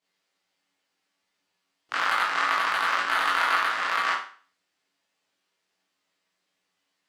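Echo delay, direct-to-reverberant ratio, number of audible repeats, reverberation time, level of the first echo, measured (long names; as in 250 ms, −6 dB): no echo audible, −9.0 dB, no echo audible, 0.45 s, no echo audible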